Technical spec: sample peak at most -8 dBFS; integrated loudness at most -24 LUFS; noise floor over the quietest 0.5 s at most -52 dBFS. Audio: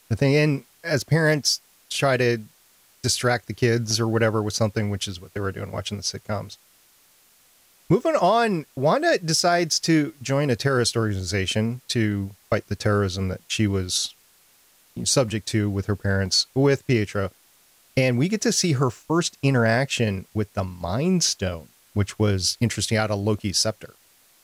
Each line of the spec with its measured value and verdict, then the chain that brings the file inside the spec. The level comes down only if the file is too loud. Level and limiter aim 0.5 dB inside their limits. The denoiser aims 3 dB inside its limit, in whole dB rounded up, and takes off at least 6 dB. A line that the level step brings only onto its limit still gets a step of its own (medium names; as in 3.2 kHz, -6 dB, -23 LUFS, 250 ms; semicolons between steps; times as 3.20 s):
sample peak -9.5 dBFS: pass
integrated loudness -23.0 LUFS: fail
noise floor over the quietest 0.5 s -58 dBFS: pass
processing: trim -1.5 dB